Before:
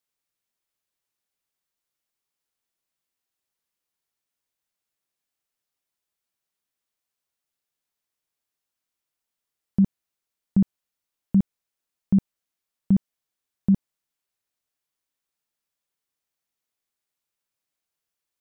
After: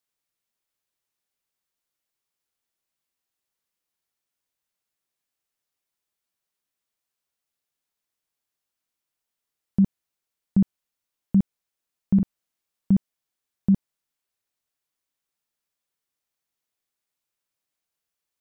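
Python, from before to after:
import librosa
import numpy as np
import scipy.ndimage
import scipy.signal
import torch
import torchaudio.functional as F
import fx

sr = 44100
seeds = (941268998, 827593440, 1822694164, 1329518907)

y = fx.doubler(x, sr, ms=44.0, db=-5.5, at=(12.15, 12.92))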